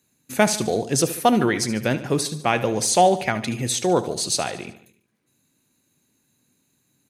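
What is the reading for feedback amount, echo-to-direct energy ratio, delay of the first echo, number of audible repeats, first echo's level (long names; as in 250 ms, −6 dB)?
55%, −13.0 dB, 73 ms, 4, −14.5 dB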